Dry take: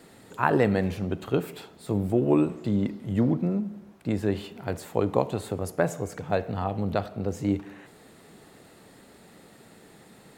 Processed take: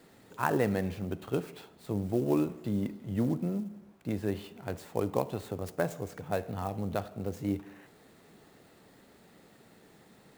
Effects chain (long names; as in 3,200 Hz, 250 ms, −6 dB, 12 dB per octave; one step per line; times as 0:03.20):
converter with an unsteady clock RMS 0.021 ms
level −6 dB